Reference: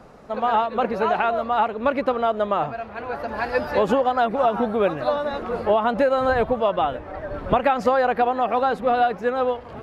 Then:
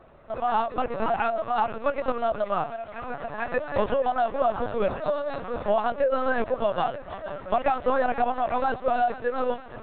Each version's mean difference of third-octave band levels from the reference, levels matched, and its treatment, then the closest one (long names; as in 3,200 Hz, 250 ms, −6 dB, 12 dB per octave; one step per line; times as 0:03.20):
4.0 dB: high-pass filter 290 Hz 24 dB per octave
feedback echo with a high-pass in the loop 473 ms, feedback 60%, high-pass 950 Hz, level −11.5 dB
linear-prediction vocoder at 8 kHz pitch kept
level −4 dB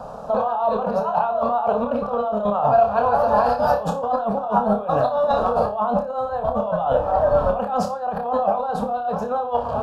6.5 dB: parametric band 550 Hz +10.5 dB 2.8 octaves
compressor whose output falls as the input rises −20 dBFS, ratio −1
phaser with its sweep stopped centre 850 Hz, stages 4
flutter between parallel walls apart 5 metres, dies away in 0.28 s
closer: first